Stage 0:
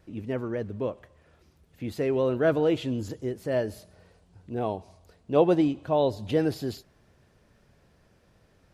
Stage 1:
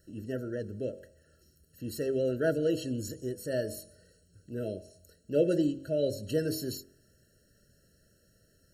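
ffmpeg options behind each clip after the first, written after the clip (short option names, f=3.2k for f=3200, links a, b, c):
-af "bandreject=f=45.21:t=h:w=4,bandreject=f=90.42:t=h:w=4,bandreject=f=135.63:t=h:w=4,bandreject=f=180.84:t=h:w=4,bandreject=f=226.05:t=h:w=4,bandreject=f=271.26:t=h:w=4,bandreject=f=316.47:t=h:w=4,bandreject=f=361.68:t=h:w=4,bandreject=f=406.89:t=h:w=4,bandreject=f=452.1:t=h:w=4,bandreject=f=497.31:t=h:w=4,bandreject=f=542.52:t=h:w=4,bandreject=f=587.73:t=h:w=4,bandreject=f=632.94:t=h:w=4,bandreject=f=678.15:t=h:w=4,bandreject=f=723.36:t=h:w=4,bandreject=f=768.57:t=h:w=4,bandreject=f=813.78:t=h:w=4,bandreject=f=858.99:t=h:w=4,bandreject=f=904.2:t=h:w=4,aexciter=amount=3.4:drive=7.5:freq=4.3k,afftfilt=real='re*eq(mod(floor(b*sr/1024/650),2),0)':imag='im*eq(mod(floor(b*sr/1024/650),2),0)':win_size=1024:overlap=0.75,volume=-4dB"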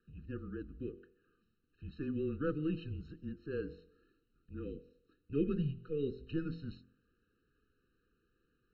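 -af "highpass=f=150:t=q:w=0.5412,highpass=f=150:t=q:w=1.307,lowpass=f=3.5k:t=q:w=0.5176,lowpass=f=3.5k:t=q:w=0.7071,lowpass=f=3.5k:t=q:w=1.932,afreqshift=-150,volume=-7dB"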